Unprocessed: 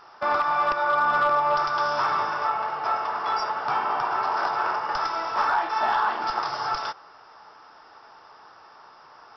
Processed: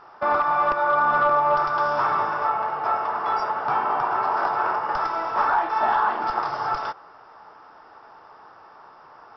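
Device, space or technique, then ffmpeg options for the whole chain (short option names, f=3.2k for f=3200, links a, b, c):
through cloth: -af "highshelf=f=3k:g=-16,volume=4dB"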